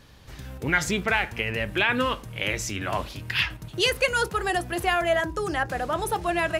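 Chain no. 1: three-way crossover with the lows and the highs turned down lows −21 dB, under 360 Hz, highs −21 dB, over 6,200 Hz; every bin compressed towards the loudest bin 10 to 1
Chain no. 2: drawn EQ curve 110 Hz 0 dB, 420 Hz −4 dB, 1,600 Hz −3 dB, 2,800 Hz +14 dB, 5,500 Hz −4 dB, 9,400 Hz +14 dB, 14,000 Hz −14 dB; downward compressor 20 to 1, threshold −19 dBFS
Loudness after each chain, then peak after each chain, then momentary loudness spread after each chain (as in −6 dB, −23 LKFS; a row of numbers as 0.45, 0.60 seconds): −26.0, −24.5 LKFS; −8.5, −5.0 dBFS; 3, 6 LU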